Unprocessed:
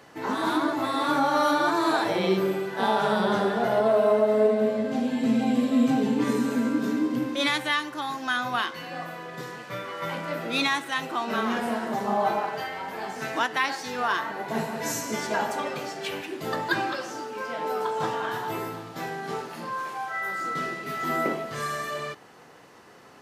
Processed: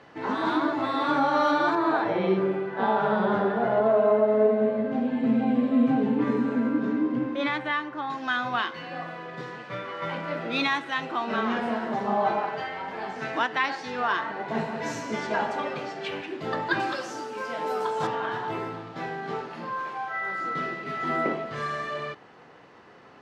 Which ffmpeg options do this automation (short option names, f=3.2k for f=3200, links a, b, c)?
-af "asetnsamples=n=441:p=0,asendcmd='1.75 lowpass f 2000;8.1 lowpass f 3700;16.8 lowpass f 9400;18.07 lowpass f 3500',lowpass=3.7k"